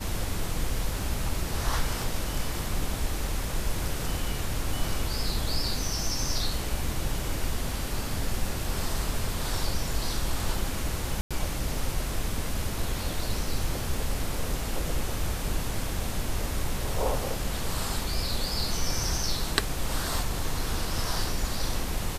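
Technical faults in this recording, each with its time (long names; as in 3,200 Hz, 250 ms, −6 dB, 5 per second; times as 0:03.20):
0:11.21–0:11.31: drop-out 96 ms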